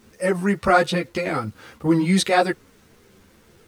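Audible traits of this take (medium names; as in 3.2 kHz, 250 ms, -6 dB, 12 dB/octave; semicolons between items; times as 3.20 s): a quantiser's noise floor 10-bit, dither none; a shimmering, thickened sound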